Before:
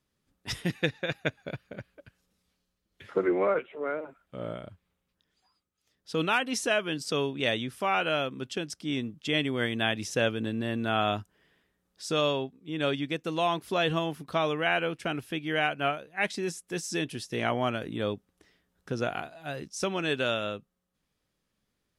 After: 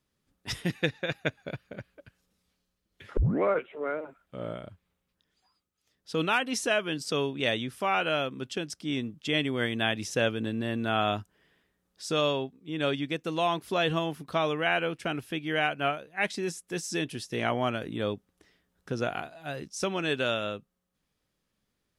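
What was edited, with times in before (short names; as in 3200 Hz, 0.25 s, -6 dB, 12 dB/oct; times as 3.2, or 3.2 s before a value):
3.17 tape start 0.25 s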